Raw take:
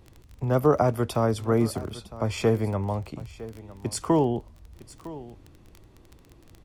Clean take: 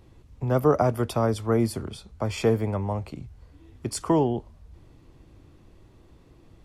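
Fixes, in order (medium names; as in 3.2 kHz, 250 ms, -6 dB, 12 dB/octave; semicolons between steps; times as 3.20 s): de-click; inverse comb 957 ms -17 dB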